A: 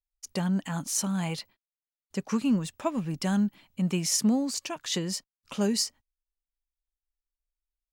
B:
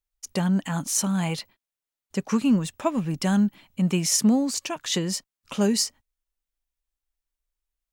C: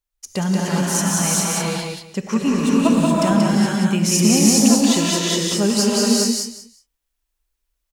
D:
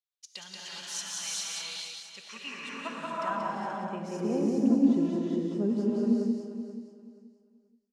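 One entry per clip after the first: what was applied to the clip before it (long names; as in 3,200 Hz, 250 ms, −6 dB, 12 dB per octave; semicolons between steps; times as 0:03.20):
parametric band 4,700 Hz −2.5 dB 0.31 octaves; level +4.5 dB
repeating echo 182 ms, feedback 20%, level −3 dB; reverb whose tail is shaped and stops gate 450 ms rising, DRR −4 dB; level +2 dB
band-pass filter sweep 3,700 Hz → 290 Hz, 0:02.13–0:04.85; repeating echo 480 ms, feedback 24%, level −12 dB; level −4 dB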